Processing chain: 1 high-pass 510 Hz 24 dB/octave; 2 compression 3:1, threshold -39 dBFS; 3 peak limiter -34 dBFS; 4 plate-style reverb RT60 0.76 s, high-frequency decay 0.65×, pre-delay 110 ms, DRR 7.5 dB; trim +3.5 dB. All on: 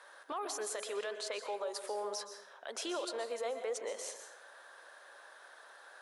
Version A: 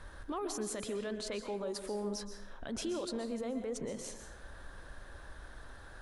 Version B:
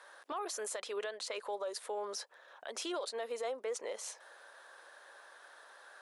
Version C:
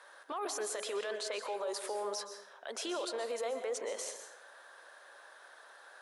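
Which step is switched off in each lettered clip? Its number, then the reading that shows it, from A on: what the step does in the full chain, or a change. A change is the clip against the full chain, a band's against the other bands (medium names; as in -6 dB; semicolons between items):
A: 1, 250 Hz band +13.0 dB; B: 4, crest factor change -2.5 dB; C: 2, mean gain reduction 5.0 dB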